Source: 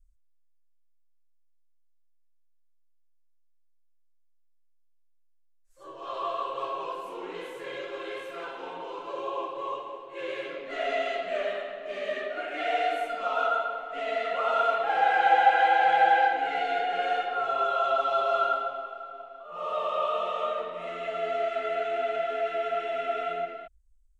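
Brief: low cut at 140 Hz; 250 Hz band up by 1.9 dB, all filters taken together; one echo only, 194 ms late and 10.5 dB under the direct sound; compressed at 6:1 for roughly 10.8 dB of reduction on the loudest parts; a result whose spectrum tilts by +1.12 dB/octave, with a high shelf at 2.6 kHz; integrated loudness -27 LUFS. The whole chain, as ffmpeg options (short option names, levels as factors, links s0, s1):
-af "highpass=140,equalizer=f=250:t=o:g=3,highshelf=f=2600:g=7,acompressor=threshold=0.0501:ratio=6,aecho=1:1:194:0.299,volume=1.58"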